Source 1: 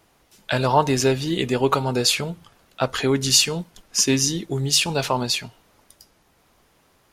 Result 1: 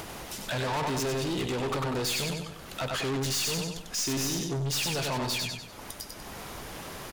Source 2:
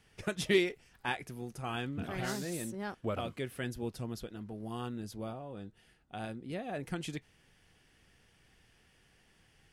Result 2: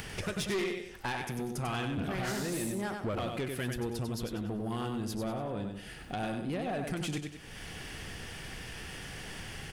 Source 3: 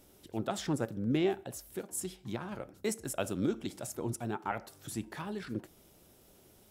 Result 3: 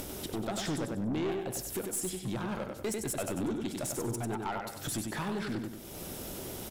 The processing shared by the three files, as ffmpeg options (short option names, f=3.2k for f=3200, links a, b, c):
-af "acompressor=mode=upward:threshold=-24dB:ratio=2.5,aecho=1:1:96|192|288|384:0.501|0.185|0.0686|0.0254,aeval=exprs='(tanh(25.1*val(0)+0.15)-tanh(0.15))/25.1':c=same"